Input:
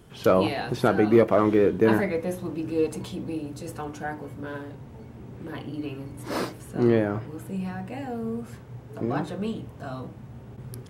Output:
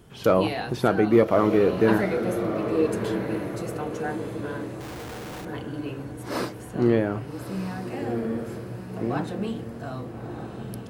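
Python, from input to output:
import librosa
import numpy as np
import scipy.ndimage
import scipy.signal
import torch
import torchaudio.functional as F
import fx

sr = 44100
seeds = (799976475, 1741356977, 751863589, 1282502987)

y = fx.echo_diffused(x, sr, ms=1267, feedback_pct=43, wet_db=-8)
y = fx.schmitt(y, sr, flips_db=-49.0, at=(4.8, 5.45))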